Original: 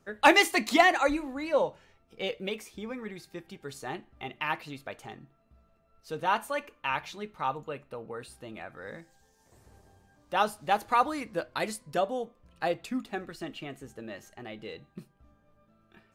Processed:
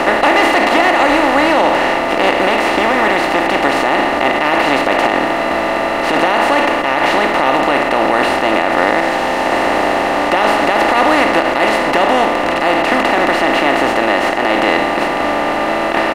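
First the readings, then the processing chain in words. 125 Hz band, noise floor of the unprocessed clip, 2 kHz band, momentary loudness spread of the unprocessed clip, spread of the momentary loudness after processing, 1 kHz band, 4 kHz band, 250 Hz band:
+15.5 dB, -67 dBFS, +18.5 dB, 21 LU, 4 LU, +18.5 dB, +17.0 dB, +19.0 dB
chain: spectral levelling over time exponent 0.2; treble shelf 4.6 kHz -10.5 dB; peak limiter -9 dBFS, peak gain reduction 8 dB; speakerphone echo 310 ms, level -15 dB; trim +7 dB

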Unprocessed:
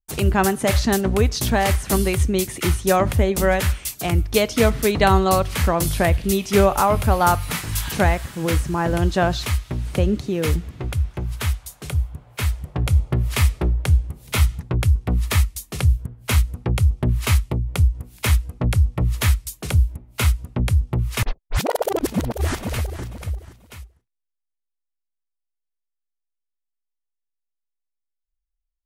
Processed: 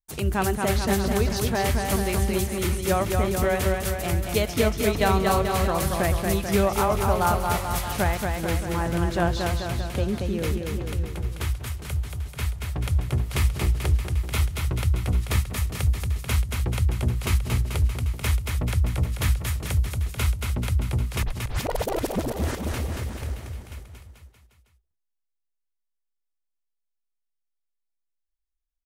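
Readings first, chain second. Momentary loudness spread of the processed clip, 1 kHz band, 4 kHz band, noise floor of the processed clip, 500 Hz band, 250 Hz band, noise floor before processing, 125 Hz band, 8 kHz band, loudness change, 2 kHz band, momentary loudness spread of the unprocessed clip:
7 LU, -4.5 dB, -4.5 dB, -79 dBFS, -4.0 dB, -4.5 dB, -80 dBFS, -4.5 dB, -4.5 dB, -4.5 dB, -4.5 dB, 8 LU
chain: bouncing-ball echo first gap 230 ms, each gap 0.9×, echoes 5; trim -6.5 dB

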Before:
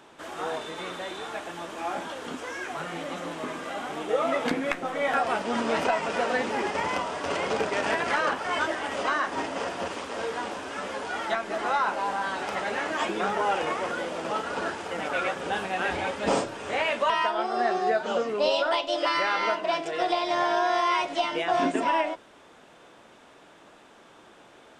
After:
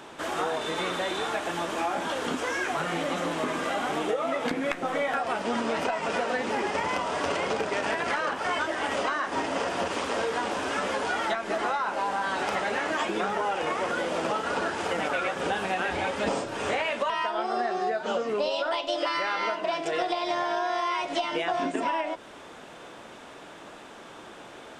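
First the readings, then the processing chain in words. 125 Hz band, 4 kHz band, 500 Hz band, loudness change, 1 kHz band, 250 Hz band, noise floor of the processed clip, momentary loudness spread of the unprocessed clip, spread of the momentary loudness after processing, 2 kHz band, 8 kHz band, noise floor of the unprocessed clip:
+1.5 dB, 0.0 dB, -0.5 dB, -0.5 dB, -1.0 dB, +0.5 dB, -46 dBFS, 10 LU, 5 LU, -0.5 dB, +1.5 dB, -53 dBFS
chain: compression 12:1, threshold -32 dBFS, peak gain reduction 13 dB; trim +7.5 dB

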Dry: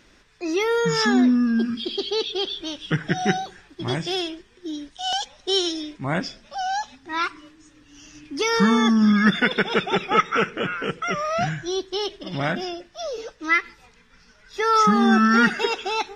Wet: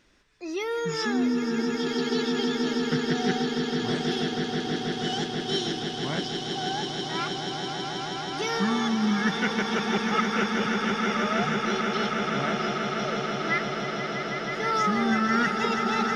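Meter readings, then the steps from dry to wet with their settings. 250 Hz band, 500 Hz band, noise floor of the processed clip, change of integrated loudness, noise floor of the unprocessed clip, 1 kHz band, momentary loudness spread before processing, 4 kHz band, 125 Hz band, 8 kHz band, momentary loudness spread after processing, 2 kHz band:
-4.5 dB, -3.0 dB, -33 dBFS, -4.5 dB, -55 dBFS, -4.0 dB, 15 LU, -3.0 dB, -3.5 dB, -3.0 dB, 6 LU, -4.0 dB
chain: echo with a slow build-up 161 ms, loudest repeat 8, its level -8 dB; trim -8 dB

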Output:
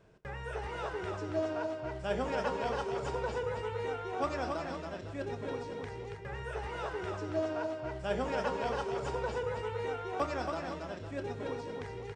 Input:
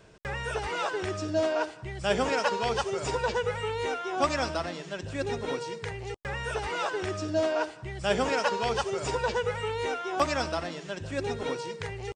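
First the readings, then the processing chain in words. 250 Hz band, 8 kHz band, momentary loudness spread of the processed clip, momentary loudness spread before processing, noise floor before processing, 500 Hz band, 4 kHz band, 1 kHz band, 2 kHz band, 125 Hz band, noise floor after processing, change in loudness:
-5.0 dB, -14.0 dB, 8 LU, 9 LU, -44 dBFS, -5.5 dB, -12.0 dB, -6.5 dB, -8.5 dB, -4.5 dB, -43 dBFS, -6.5 dB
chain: treble shelf 2.2 kHz -10 dB; doubling 28 ms -12.5 dB; multi-tap echo 92/278/507 ms -16.5/-5/-12.5 dB; trim -6.5 dB

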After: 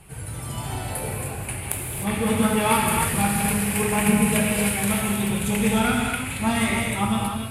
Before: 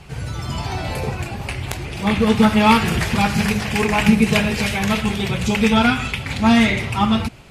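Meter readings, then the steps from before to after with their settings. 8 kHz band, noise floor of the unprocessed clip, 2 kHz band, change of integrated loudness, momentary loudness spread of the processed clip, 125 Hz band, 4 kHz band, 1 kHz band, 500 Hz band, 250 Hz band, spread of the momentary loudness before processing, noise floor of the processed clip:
+7.0 dB, -31 dBFS, -5.0 dB, -4.5 dB, 10 LU, -4.5 dB, -7.0 dB, -4.5 dB, -4.0 dB, -5.5 dB, 12 LU, -33 dBFS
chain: resonant high shelf 7.5 kHz +11 dB, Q 3; gated-style reverb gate 340 ms flat, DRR -1 dB; trim -8 dB

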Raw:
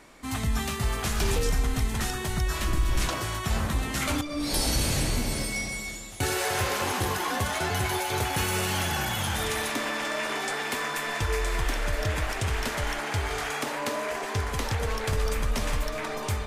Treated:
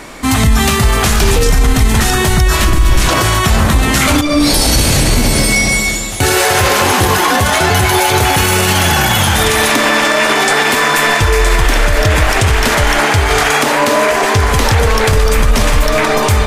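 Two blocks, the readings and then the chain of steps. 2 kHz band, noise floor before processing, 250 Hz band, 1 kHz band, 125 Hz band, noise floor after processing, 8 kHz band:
+18.0 dB, -34 dBFS, +17.5 dB, +18.0 dB, +16.5 dB, -14 dBFS, +17.0 dB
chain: loudness maximiser +22 dB; trim -1 dB

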